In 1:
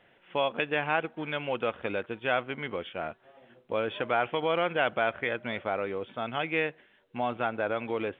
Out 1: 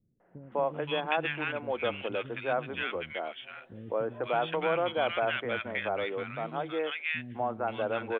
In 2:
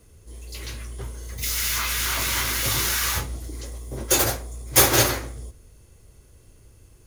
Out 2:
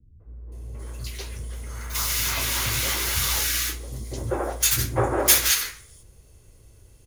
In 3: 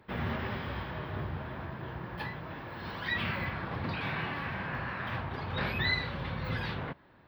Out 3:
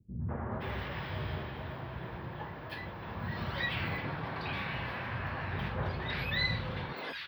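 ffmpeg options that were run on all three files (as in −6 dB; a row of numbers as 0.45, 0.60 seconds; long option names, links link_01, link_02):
-filter_complex "[0:a]acrossover=split=250|1400[link_01][link_02][link_03];[link_02]adelay=200[link_04];[link_03]adelay=520[link_05];[link_01][link_04][link_05]amix=inputs=3:normalize=0"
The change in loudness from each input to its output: −1.5, −1.0, −1.5 LU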